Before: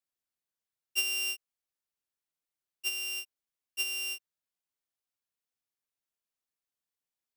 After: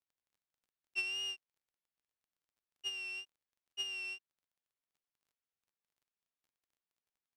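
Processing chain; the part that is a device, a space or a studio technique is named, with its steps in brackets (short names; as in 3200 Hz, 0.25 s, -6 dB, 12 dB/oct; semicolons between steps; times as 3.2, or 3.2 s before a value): lo-fi chain (LPF 3800 Hz 12 dB/oct; wow and flutter; crackle 23/s -61 dBFS); gain -4 dB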